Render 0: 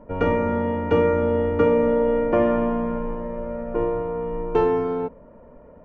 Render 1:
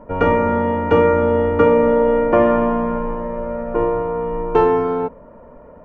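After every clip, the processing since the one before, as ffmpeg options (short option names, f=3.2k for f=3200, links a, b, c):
-af "equalizer=f=1.1k:t=o:w=1.6:g=5,volume=3.5dB"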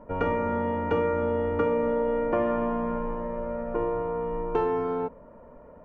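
-af "acompressor=threshold=-18dB:ratio=2,volume=-7dB"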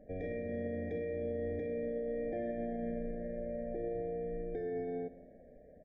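-af "alimiter=limit=-22dB:level=0:latency=1:release=14,aecho=1:1:172|344|516|688:0.106|0.0508|0.0244|0.0117,afftfilt=real='re*eq(mod(floor(b*sr/1024/790),2),0)':imag='im*eq(mod(floor(b*sr/1024/790),2),0)':win_size=1024:overlap=0.75,volume=-8dB"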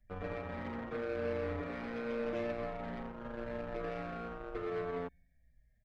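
-filter_complex "[0:a]acrossover=split=120|1500[a][b][c];[b]acrusher=bits=5:mix=0:aa=0.5[d];[a][d][c]amix=inputs=3:normalize=0,asplit=2[e][f];[f]adelay=6.2,afreqshift=-0.86[g];[e][g]amix=inputs=2:normalize=1,volume=1.5dB"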